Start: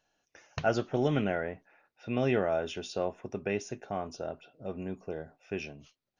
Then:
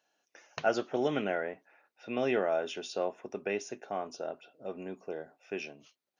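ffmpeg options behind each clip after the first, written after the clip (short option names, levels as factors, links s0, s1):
-af "highpass=280"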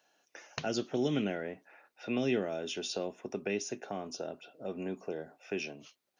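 -filter_complex "[0:a]acrossover=split=330|3000[s0][s1][s2];[s1]acompressor=threshold=0.00562:ratio=6[s3];[s0][s3][s2]amix=inputs=3:normalize=0,volume=1.88"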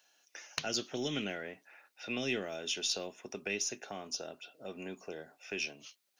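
-af "tiltshelf=f=1500:g=-7,aeval=exprs='0.158*(cos(1*acos(clip(val(0)/0.158,-1,1)))-cos(1*PI/2))+0.0501*(cos(2*acos(clip(val(0)/0.158,-1,1)))-cos(2*PI/2))+0.0126*(cos(4*acos(clip(val(0)/0.158,-1,1)))-cos(4*PI/2))+0.00158*(cos(8*acos(clip(val(0)/0.158,-1,1)))-cos(8*PI/2))':c=same"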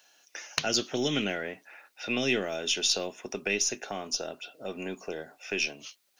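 -af "asubboost=boost=3:cutoff=53,volume=2.37"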